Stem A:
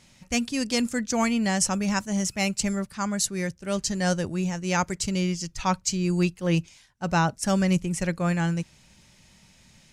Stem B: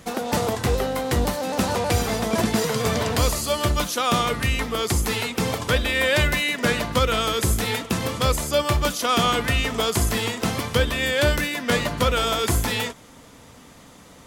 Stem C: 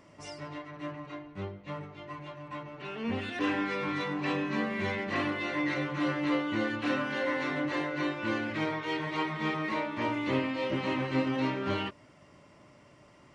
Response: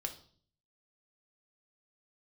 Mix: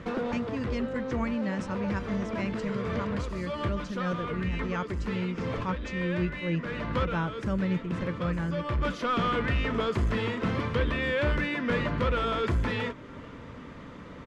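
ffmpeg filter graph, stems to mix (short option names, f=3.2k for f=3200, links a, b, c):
-filter_complex "[0:a]volume=-6dB,asplit=2[a][b];[1:a]asoftclip=type=tanh:threshold=-20dB,alimiter=level_in=1.5dB:limit=-24dB:level=0:latency=1:release=329,volume=-1.5dB,acontrast=81,volume=-2dB[c];[2:a]acompressor=threshold=-36dB:ratio=6,adelay=1450,volume=-10.5dB[d];[b]apad=whole_len=628904[e];[c][e]sidechaincompress=threshold=-35dB:ratio=4:attack=7.6:release=473[f];[a][f][d]amix=inputs=3:normalize=0,lowpass=2k,equalizer=f=760:w=4:g=-11"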